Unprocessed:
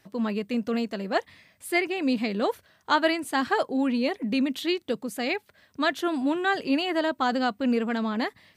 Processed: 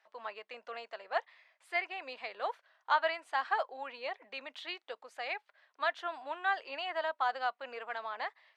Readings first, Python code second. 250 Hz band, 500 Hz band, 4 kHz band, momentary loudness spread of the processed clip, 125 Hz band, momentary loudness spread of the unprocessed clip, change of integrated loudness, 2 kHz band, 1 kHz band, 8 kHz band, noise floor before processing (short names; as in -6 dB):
-33.5 dB, -11.5 dB, -10.5 dB, 12 LU, n/a, 5 LU, -10.0 dB, -6.5 dB, -5.0 dB, under -20 dB, -65 dBFS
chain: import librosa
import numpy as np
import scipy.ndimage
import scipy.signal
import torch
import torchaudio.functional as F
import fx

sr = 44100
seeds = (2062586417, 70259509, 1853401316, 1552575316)

y = scipy.signal.sosfilt(scipy.signal.butter(4, 690.0, 'highpass', fs=sr, output='sos'), x)
y = fx.spacing_loss(y, sr, db_at_10k=25)
y = F.gain(torch.from_numpy(y), -2.0).numpy()